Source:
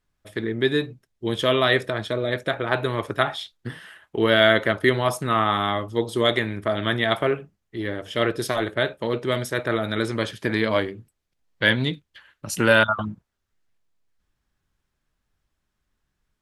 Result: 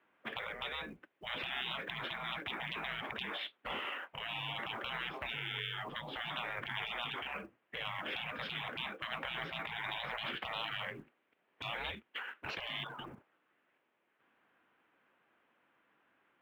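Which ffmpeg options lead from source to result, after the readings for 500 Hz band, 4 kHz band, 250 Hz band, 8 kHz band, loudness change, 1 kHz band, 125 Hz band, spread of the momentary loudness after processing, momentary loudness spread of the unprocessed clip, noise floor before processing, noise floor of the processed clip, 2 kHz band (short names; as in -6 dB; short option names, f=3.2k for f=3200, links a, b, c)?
-26.0 dB, -11.5 dB, -25.5 dB, under -25 dB, -17.0 dB, -15.5 dB, -22.5 dB, 5 LU, 14 LU, -78 dBFS, -79 dBFS, -14.5 dB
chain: -af "highpass=f=340:t=q:w=0.5412,highpass=f=340:t=q:w=1.307,lowpass=f=2.9k:t=q:w=0.5176,lowpass=f=2.9k:t=q:w=0.7071,lowpass=f=2.9k:t=q:w=1.932,afreqshift=-80,acompressor=threshold=-31dB:ratio=4,afftfilt=real='re*lt(hypot(re,im),0.0158)':imag='im*lt(hypot(re,im),0.0158)':win_size=1024:overlap=0.75,acrusher=bits=8:mode=log:mix=0:aa=0.000001,volume=11dB"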